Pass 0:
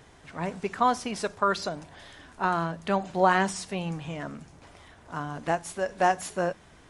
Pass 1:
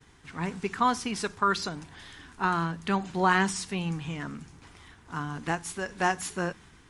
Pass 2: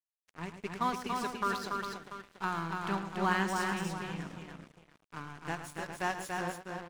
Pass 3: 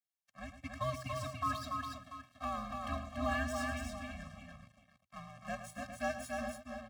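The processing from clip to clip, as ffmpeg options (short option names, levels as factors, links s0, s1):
-af "equalizer=f=610:t=o:w=0.61:g=-14,agate=range=0.0224:threshold=0.00282:ratio=3:detection=peak,volume=1.26"
-filter_complex "[0:a]asplit=2[s0][s1];[s1]adelay=403,lowpass=f=1500:p=1,volume=0.531,asplit=2[s2][s3];[s3]adelay=403,lowpass=f=1500:p=1,volume=0.28,asplit=2[s4][s5];[s5]adelay=403,lowpass=f=1500:p=1,volume=0.28,asplit=2[s6][s7];[s7]adelay=403,lowpass=f=1500:p=1,volume=0.28[s8];[s2][s4][s6][s8]amix=inputs=4:normalize=0[s9];[s0][s9]amix=inputs=2:normalize=0,aeval=exprs='sgn(val(0))*max(abs(val(0))-0.0133,0)':c=same,asplit=2[s10][s11];[s11]aecho=0:1:107.9|285.7:0.282|0.631[s12];[s10][s12]amix=inputs=2:normalize=0,volume=0.473"
-af "afreqshift=-120,highpass=90,afftfilt=real='re*eq(mod(floor(b*sr/1024/260),2),0)':imag='im*eq(mod(floor(b*sr/1024/260),2),0)':win_size=1024:overlap=0.75,volume=0.891"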